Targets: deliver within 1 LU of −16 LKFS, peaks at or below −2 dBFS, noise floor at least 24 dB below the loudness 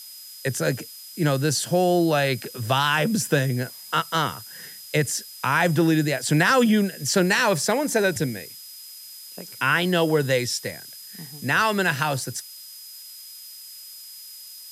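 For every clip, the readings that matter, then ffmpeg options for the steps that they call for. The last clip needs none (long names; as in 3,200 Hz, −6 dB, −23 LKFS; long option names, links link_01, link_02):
interfering tone 5,000 Hz; level of the tone −43 dBFS; background noise floor −42 dBFS; target noise floor −47 dBFS; integrated loudness −22.5 LKFS; sample peak −6.5 dBFS; target loudness −16.0 LKFS
→ -af "bandreject=frequency=5000:width=30"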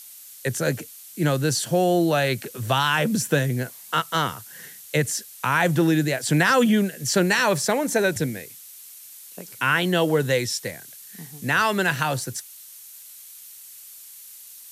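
interfering tone none found; background noise floor −44 dBFS; target noise floor −47 dBFS
→ -af "afftdn=noise_reduction=6:noise_floor=-44"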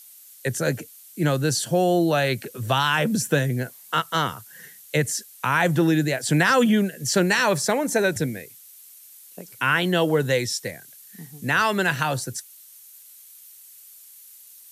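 background noise floor −48 dBFS; integrated loudness −22.5 LKFS; sample peak −6.5 dBFS; target loudness −16.0 LKFS
→ -af "volume=6.5dB,alimiter=limit=-2dB:level=0:latency=1"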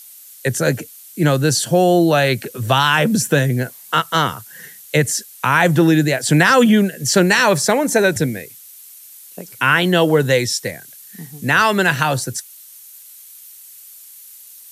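integrated loudness −16.0 LKFS; sample peak −2.0 dBFS; background noise floor −41 dBFS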